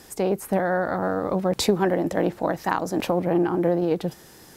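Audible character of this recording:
background noise floor −49 dBFS
spectral slope −5.5 dB per octave

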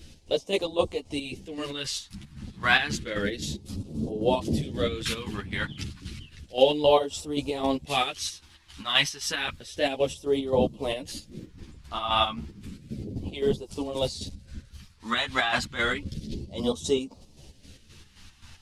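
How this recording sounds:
phaser sweep stages 2, 0.31 Hz, lowest notch 470–1,700 Hz
chopped level 3.8 Hz, depth 60%, duty 50%
a shimmering, thickened sound

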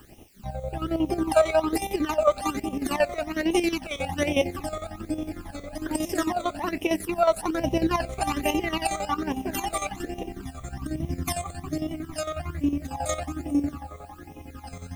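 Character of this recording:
chopped level 11 Hz, depth 65%, duty 55%
a quantiser's noise floor 10 bits, dither triangular
phaser sweep stages 12, 1.2 Hz, lowest notch 280–1,500 Hz

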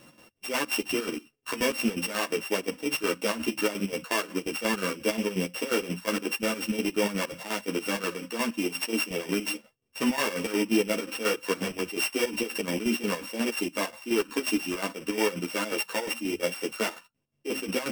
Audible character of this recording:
a buzz of ramps at a fixed pitch in blocks of 16 samples
chopped level 5.6 Hz, depth 65%, duty 55%
a shimmering, thickened sound

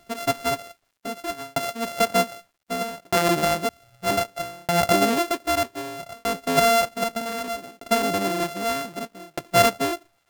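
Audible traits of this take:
a buzz of ramps at a fixed pitch in blocks of 64 samples
tremolo saw down 0.64 Hz, depth 100%
a quantiser's noise floor 12 bits, dither none

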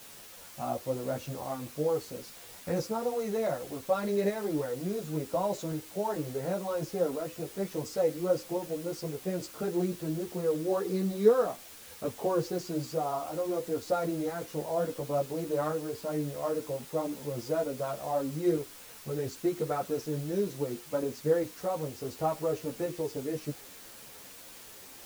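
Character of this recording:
tremolo saw up 0.7 Hz, depth 35%
a quantiser's noise floor 8 bits, dither triangular
a shimmering, thickened sound

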